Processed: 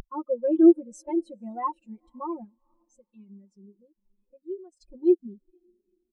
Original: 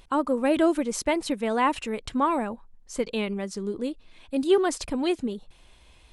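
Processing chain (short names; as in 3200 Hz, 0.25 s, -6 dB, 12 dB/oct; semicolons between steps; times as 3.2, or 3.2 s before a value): 2.44–4.77 compressor 2.5:1, threshold -35 dBFS, peak gain reduction 13 dB; tone controls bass +2 dB, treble +10 dB; comb 5.6 ms, depth 75%; diffused feedback echo 0.474 s, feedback 59%, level -15 dB; sample leveller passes 1; upward compressor, threshold -26 dBFS; spectral expander 2.5:1; gain -2.5 dB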